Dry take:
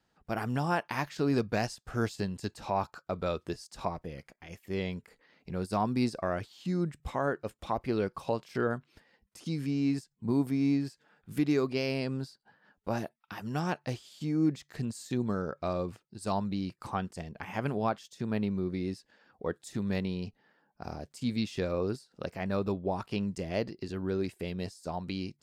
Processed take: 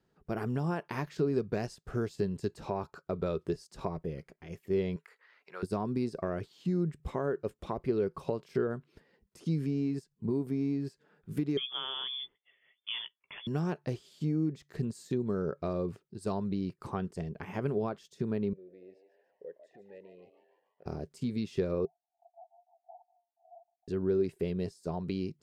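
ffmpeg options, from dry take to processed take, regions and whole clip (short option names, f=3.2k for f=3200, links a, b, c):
-filter_complex "[0:a]asettb=1/sr,asplit=3[a][b][c];[a]atrim=end=4.964[d];[b]atrim=start=4.96:end=5.63,asetpts=PTS-STARTPTS,afade=t=in:d=0.004:c=qsin,afade=t=out:st=0.666:d=0.004:c=qsin,highpass=1k,equalizer=f=1.4k:t=o:w=2:g=9[e];[c]atrim=start=5.626[f];[d][e]acrossfade=d=0.004:c1=hsin:c2=qsin[g];[g][f]acrossfade=d=0.004:c1=qsin:c2=hsin,asettb=1/sr,asplit=3[h][i][j];[h]atrim=end=11.574[k];[i]atrim=start=11.57:end=13.47,asetpts=PTS-STARTPTS,afade=t=in:d=0.004:c=qsin,afade=t=out:st=1.896:d=0.004:c=qsin,asplit=2[l][m];[m]adelay=16,volume=-11.5dB[n];[l][n]amix=inputs=2:normalize=0,atrim=end_sample=83790,lowpass=f=3.1k:t=q:w=0.5098,lowpass=f=3.1k:t=q:w=0.6013,lowpass=f=3.1k:t=q:w=0.9,lowpass=f=3.1k:t=q:w=2.563,afreqshift=-3600[o];[j]atrim=start=13.466[p];[k][o]acrossfade=d=0.004:c1=hsin:c2=qsin[q];[q][p]acrossfade=d=0.004:c1=qsin:c2=hsin,asettb=1/sr,asplit=3[r][s][t];[r]atrim=end=18.534[u];[s]atrim=start=18.53:end=20.86,asetpts=PTS-STARTPTS,afade=t=in:d=0.004:c=qsin,afade=t=out:st=2.326:d=0.004:c=qsin,acompressor=threshold=-39dB:ratio=2.5:attack=3.2:release=140:knee=1:detection=peak,asplit=3[v][w][x];[v]bandpass=f=530:t=q:w=8,volume=0dB[y];[w]bandpass=f=1.84k:t=q:w=8,volume=-6dB[z];[x]bandpass=f=2.48k:t=q:w=8,volume=-9dB[aa];[y][z][aa]amix=inputs=3:normalize=0,asplit=7[ab][ac][ad][ae][af][ag][ah];[ac]adelay=147,afreqshift=110,volume=-10dB[ai];[ad]adelay=294,afreqshift=220,volume=-15.2dB[aj];[ae]adelay=441,afreqshift=330,volume=-20.4dB[ak];[af]adelay=588,afreqshift=440,volume=-25.6dB[al];[ag]adelay=735,afreqshift=550,volume=-30.8dB[am];[ah]adelay=882,afreqshift=660,volume=-36dB[an];[ab][ai][aj][ak][al][am][an]amix=inputs=7:normalize=0,atrim=end_sample=102753[ao];[t]atrim=start=20.856[ap];[u][ao]acrossfade=d=0.004:c1=hsin:c2=qsin[aq];[aq][ap]acrossfade=d=0.004:c1=qsin:c2=hsin,asettb=1/sr,asplit=3[ar][as][at];[ar]atrim=end=21.854[au];[as]atrim=start=21.85:end=23.88,asetpts=PTS-STARTPTS,afade=t=in:d=0.004:c=qsin,afade=t=out:st=2.026:d=0.004:c=qsin,acompressor=threshold=-47dB:ratio=2.5:attack=3.2:release=140:knee=1:detection=peak,asuperpass=centerf=760:order=12:qfactor=3.9,aecho=1:1:4.3:0.87,atrim=end_sample=89523[av];[at]atrim=start=23.876[aw];[au][av]acrossfade=d=0.004:c1=hsin:c2=qsin[ax];[ax][aw]acrossfade=d=0.004:c1=qsin:c2=hsin,tiltshelf=f=1.3k:g=3.5,acompressor=threshold=-27dB:ratio=6,equalizer=f=160:t=o:w=0.33:g=6,equalizer=f=400:t=o:w=0.33:g=10,equalizer=f=800:t=o:w=0.33:g=-4,volume=-3dB"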